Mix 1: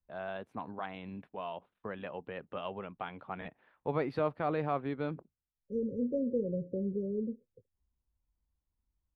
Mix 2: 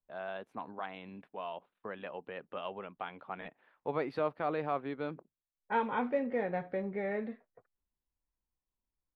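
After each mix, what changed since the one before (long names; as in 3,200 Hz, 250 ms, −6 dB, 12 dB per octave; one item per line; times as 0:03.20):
second voice: remove linear-phase brick-wall band-stop 570–5,700 Hz
master: add parametric band 63 Hz −13.5 dB 2.6 octaves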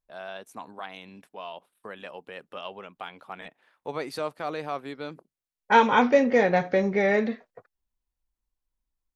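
second voice +11.5 dB
master: remove high-frequency loss of the air 420 metres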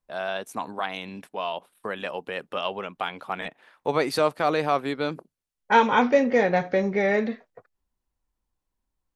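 first voice +9.0 dB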